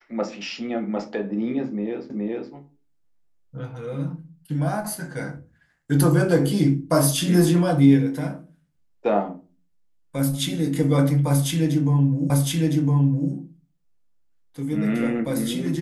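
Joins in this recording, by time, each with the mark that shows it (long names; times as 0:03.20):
0:02.10: the same again, the last 0.42 s
0:12.30: the same again, the last 1.01 s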